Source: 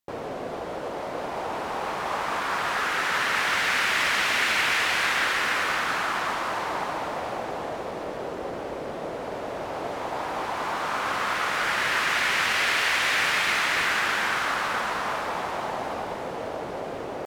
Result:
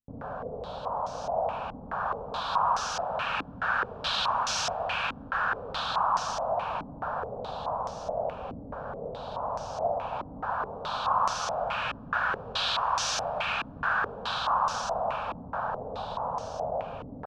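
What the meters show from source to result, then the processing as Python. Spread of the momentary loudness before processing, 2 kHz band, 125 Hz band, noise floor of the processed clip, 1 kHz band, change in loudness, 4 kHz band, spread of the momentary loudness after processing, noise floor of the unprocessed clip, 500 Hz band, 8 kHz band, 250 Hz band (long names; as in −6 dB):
12 LU, −10.0 dB, 0.0 dB, −44 dBFS, −1.0 dB, −5.0 dB, −5.5 dB, 10 LU, −34 dBFS, −2.0 dB, −4.5 dB, −6.5 dB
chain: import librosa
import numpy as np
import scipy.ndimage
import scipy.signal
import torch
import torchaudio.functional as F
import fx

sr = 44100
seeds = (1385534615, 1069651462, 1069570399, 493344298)

y = fx.low_shelf(x, sr, hz=140.0, db=8.0)
y = fx.fixed_phaser(y, sr, hz=840.0, stages=4)
y = fx.filter_held_lowpass(y, sr, hz=4.7, low_hz=280.0, high_hz=5900.0)
y = F.gain(torch.from_numpy(y), -3.0).numpy()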